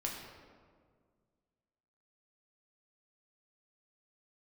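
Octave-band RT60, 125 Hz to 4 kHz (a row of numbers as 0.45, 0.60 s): 2.4, 2.3, 2.0, 1.7, 1.3, 0.95 s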